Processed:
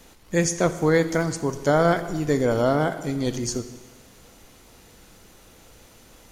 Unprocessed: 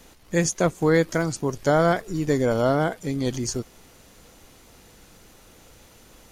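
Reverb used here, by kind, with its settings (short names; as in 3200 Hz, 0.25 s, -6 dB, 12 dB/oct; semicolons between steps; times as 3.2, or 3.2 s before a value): plate-style reverb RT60 1.3 s, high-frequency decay 0.95×, DRR 10 dB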